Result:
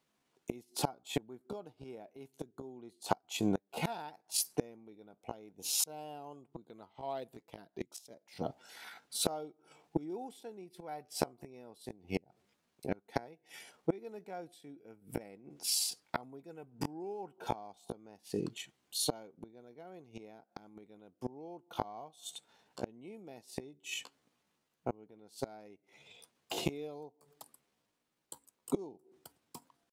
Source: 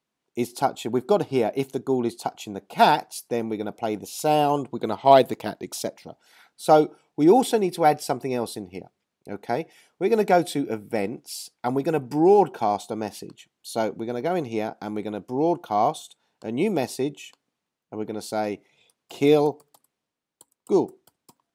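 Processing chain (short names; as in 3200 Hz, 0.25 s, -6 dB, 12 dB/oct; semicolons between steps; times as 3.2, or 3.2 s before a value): flipped gate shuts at -22 dBFS, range -30 dB; vibrato 3.5 Hz 6 cents; tempo 0.72×; gain +3.5 dB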